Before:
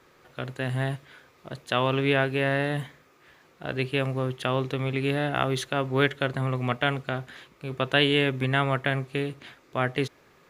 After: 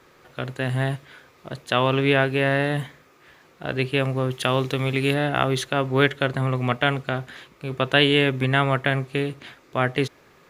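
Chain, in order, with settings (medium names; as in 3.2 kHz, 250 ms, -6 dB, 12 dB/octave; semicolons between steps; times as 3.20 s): 4.31–5.14 s: treble shelf 3.9 kHz +8.5 dB; trim +4 dB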